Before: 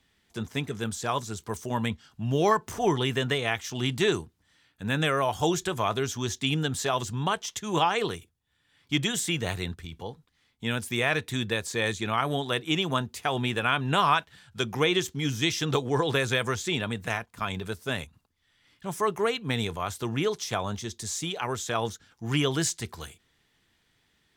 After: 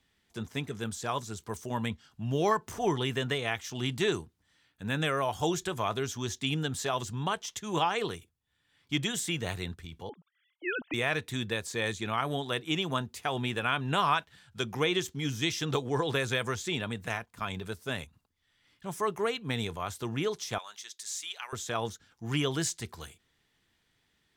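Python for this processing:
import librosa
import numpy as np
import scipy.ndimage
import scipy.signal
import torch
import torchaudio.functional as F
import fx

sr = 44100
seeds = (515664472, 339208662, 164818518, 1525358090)

y = fx.sine_speech(x, sr, at=(10.09, 10.94))
y = fx.highpass(y, sr, hz=1500.0, slope=12, at=(20.58, 21.53))
y = y * librosa.db_to_amplitude(-4.0)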